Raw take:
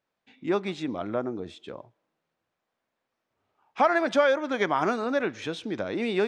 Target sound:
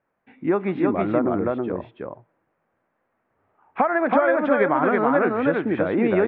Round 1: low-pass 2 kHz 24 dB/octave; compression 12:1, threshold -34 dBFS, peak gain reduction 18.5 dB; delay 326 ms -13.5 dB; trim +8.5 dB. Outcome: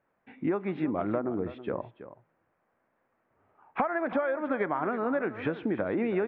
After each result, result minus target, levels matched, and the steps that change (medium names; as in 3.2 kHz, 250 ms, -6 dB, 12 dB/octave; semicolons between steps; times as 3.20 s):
compression: peak gain reduction +8.5 dB; echo-to-direct -11.5 dB
change: compression 12:1, threshold -24.5 dBFS, peak gain reduction 9.5 dB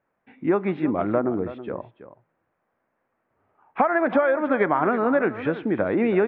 echo-to-direct -11.5 dB
change: delay 326 ms -2 dB